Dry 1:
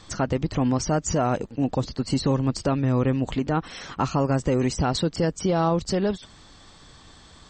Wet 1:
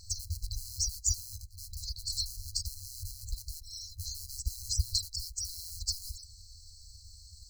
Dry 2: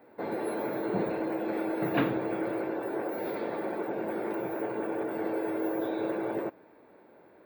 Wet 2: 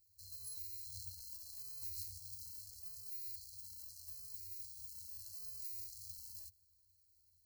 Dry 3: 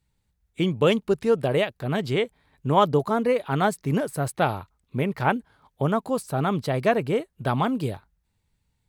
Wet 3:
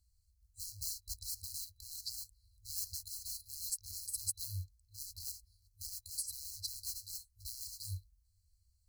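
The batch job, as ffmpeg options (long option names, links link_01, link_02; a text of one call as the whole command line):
ffmpeg -i in.wav -af "acrusher=bits=5:mode=log:mix=0:aa=0.000001,afftfilt=real='re*(1-between(b*sr/4096,100,4000))':imag='im*(1-between(b*sr/4096,100,4000))':win_size=4096:overlap=0.75,volume=1dB" out.wav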